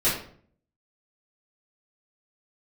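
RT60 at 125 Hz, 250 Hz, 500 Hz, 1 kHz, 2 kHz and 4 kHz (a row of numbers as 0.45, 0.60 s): 0.75, 0.70, 0.60, 0.50, 0.45, 0.35 s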